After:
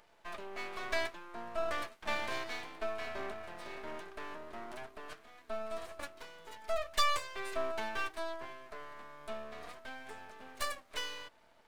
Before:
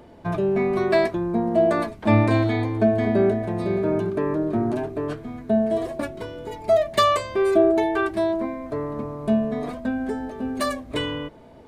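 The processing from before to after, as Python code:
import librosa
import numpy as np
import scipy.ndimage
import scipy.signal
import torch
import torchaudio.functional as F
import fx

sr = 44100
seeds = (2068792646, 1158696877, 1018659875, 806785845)

y = scipy.signal.sosfilt(scipy.signal.butter(2, 1000.0, 'highpass', fs=sr, output='sos'), x)
y = np.maximum(y, 0.0)
y = y * 10.0 ** (-4.0 / 20.0)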